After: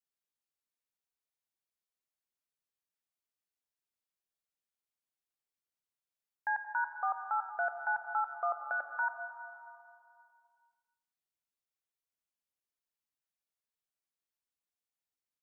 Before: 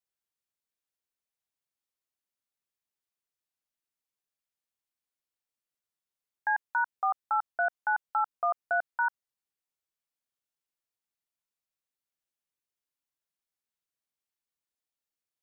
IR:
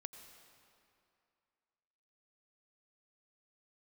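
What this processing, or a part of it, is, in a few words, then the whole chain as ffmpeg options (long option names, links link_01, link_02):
stairwell: -filter_complex "[1:a]atrim=start_sample=2205[link_01];[0:a][link_01]afir=irnorm=-1:irlink=0,asplit=3[link_02][link_03][link_04];[link_02]afade=type=out:start_time=8.57:duration=0.02[link_05];[link_03]aecho=1:1:3.6:0.74,afade=type=in:start_time=8.57:duration=0.02,afade=type=out:start_time=9.02:duration=0.02[link_06];[link_04]afade=type=in:start_time=9.02:duration=0.02[link_07];[link_05][link_06][link_07]amix=inputs=3:normalize=0"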